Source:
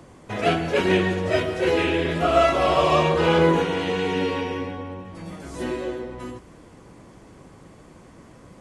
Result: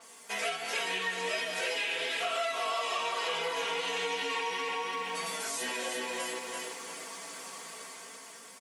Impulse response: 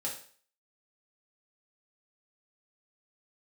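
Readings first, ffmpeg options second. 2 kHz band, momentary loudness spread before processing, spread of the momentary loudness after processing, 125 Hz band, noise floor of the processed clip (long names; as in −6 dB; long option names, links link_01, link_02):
−4.5 dB, 17 LU, 11 LU, −30.5 dB, −50 dBFS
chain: -filter_complex "[0:a]flanger=delay=4.5:depth=2.4:regen=-62:speed=0.37:shape=triangular,dynaudnorm=framelen=280:gausssize=7:maxgain=9.5dB,flanger=delay=15:depth=2.3:speed=2.8,asplit=2[link_01][link_02];[link_02]alimiter=limit=-15.5dB:level=0:latency=1,volume=2dB[link_03];[link_01][link_03]amix=inputs=2:normalize=0,highpass=frequency=920:poles=1,aemphasis=mode=production:type=riaa,aecho=1:1:4.4:0.89,aecho=1:1:337|674|1011|1348:0.473|0.166|0.058|0.0203,acompressor=threshold=-28dB:ratio=6,adynamicequalizer=threshold=0.00398:dfrequency=7100:dqfactor=0.7:tfrequency=7100:tqfactor=0.7:attack=5:release=100:ratio=0.375:range=3:mode=cutabove:tftype=highshelf,volume=-3dB"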